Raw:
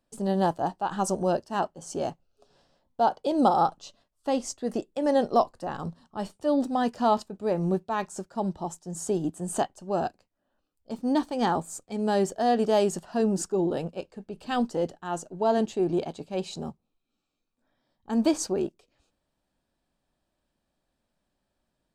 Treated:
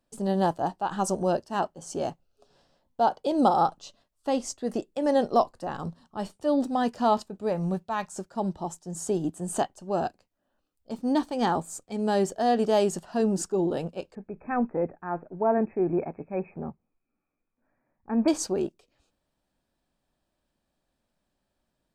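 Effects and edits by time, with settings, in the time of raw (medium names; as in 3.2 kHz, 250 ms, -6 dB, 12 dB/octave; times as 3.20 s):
7.48–8.14 s: peaking EQ 350 Hz -5.5 dB -> -13.5 dB 0.66 oct
14.15–18.28 s: brick-wall FIR low-pass 2.6 kHz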